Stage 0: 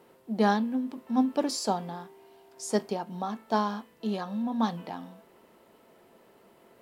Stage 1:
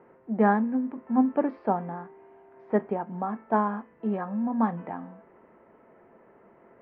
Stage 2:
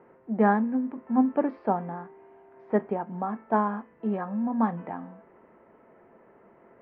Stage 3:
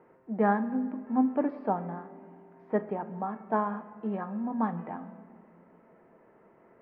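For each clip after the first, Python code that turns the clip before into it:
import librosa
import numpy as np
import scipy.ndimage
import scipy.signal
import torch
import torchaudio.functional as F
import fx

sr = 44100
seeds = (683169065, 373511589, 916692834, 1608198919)

y1 = scipy.signal.sosfilt(scipy.signal.butter(6, 2100.0, 'lowpass', fs=sr, output='sos'), x)
y1 = F.gain(torch.from_numpy(y1), 2.5).numpy()
y2 = y1
y3 = fx.room_shoebox(y2, sr, seeds[0], volume_m3=3100.0, walls='mixed', distance_m=0.52)
y3 = F.gain(torch.from_numpy(y3), -3.5).numpy()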